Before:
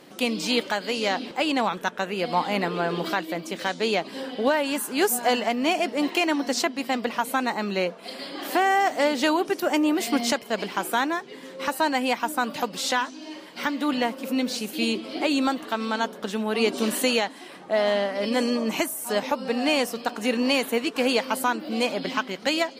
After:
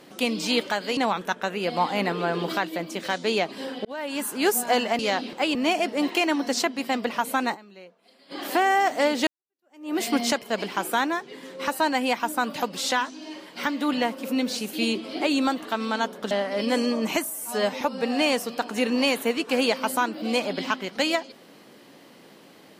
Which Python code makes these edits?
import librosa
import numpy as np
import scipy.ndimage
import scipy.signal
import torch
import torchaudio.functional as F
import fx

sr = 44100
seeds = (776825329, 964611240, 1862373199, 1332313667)

y = fx.edit(x, sr, fx.move(start_s=0.97, length_s=0.56, to_s=5.55),
    fx.fade_in_span(start_s=4.41, length_s=0.43),
    fx.fade_down_up(start_s=7.54, length_s=0.78, db=-21.0, fade_s=0.14, curve='exp'),
    fx.fade_in_span(start_s=9.27, length_s=0.69, curve='exp'),
    fx.cut(start_s=16.31, length_s=1.64),
    fx.stretch_span(start_s=18.94, length_s=0.34, factor=1.5), tone=tone)